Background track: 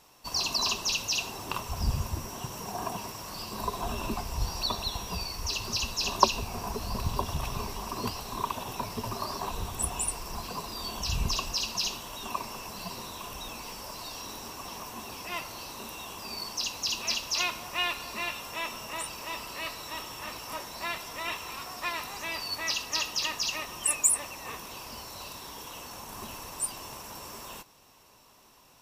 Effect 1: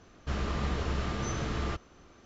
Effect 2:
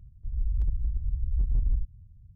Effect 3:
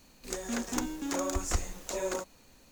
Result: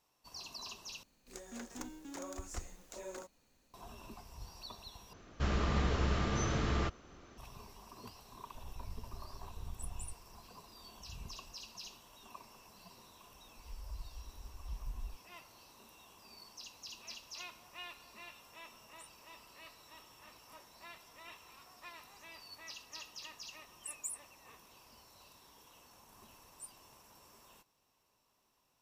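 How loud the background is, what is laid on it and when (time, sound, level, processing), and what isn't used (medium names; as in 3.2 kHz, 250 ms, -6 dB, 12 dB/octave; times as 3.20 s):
background track -18.5 dB
1.03 s: replace with 3 -13 dB
5.13 s: replace with 1 -0.5 dB
8.29 s: add 2 -16 dB + half-wave rectifier
13.32 s: add 2 -15 dB + expander on every frequency bin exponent 2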